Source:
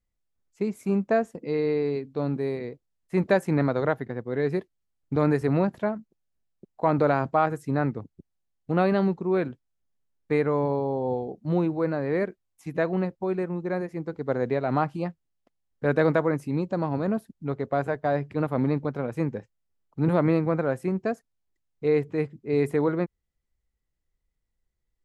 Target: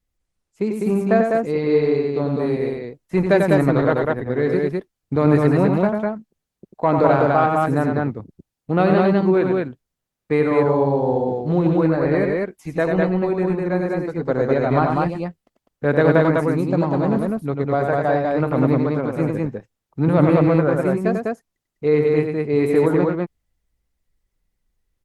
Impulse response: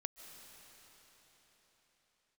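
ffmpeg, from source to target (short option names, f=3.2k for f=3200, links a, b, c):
-af "acontrast=29,aecho=1:1:93.29|201.2:0.562|0.794" -ar 48000 -c:a libopus -b:a 20k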